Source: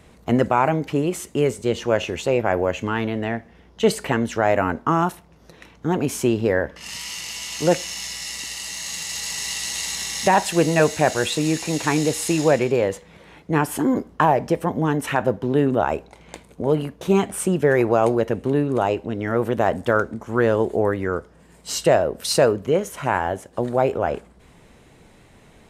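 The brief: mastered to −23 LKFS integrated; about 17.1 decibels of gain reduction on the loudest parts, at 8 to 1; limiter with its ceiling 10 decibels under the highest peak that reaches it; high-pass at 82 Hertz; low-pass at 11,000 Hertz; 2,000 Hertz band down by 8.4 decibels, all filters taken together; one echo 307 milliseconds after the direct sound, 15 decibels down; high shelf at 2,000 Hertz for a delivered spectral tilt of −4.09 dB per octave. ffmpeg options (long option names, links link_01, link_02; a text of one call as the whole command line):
ffmpeg -i in.wav -af "highpass=82,lowpass=11000,highshelf=frequency=2000:gain=-5,equalizer=frequency=2000:width_type=o:gain=-8.5,acompressor=threshold=-31dB:ratio=8,alimiter=level_in=2.5dB:limit=-24dB:level=0:latency=1,volume=-2.5dB,aecho=1:1:307:0.178,volume=14.5dB" out.wav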